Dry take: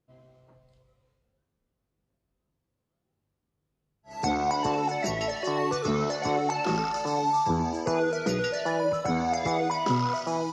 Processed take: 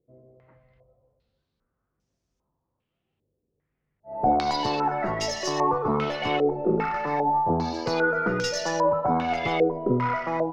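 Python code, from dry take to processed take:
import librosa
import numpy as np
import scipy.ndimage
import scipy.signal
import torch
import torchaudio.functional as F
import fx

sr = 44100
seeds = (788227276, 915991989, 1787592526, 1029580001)

y = fx.tracing_dist(x, sr, depth_ms=0.069)
y = (np.kron(y[::2], np.eye(2)[0]) * 2)[:len(y)]
y = fx.filter_held_lowpass(y, sr, hz=2.5, low_hz=460.0, high_hz=6000.0)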